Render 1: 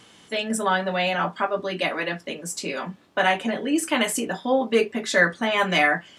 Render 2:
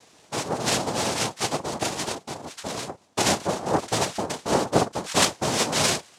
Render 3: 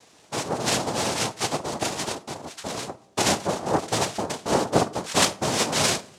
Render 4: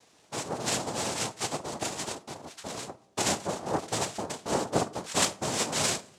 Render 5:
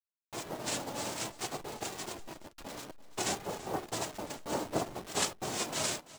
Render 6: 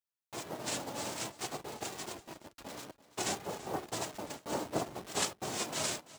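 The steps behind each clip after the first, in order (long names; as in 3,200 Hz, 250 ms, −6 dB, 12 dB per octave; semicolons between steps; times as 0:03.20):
high-shelf EQ 5,100 Hz −10 dB; cochlear-implant simulation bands 2; level −1.5 dB
comb and all-pass reverb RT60 0.67 s, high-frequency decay 0.3×, pre-delay 10 ms, DRR 17.5 dB
dynamic equaliser 7,600 Hz, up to +5 dB, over −44 dBFS, Q 3.1; level −6.5 dB
hold until the input has moved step −36 dBFS; flanger 0.57 Hz, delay 2.3 ms, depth 1.3 ms, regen +65%; single-tap delay 337 ms −18 dB; level −1.5 dB
high-pass filter 63 Hz; level −1.5 dB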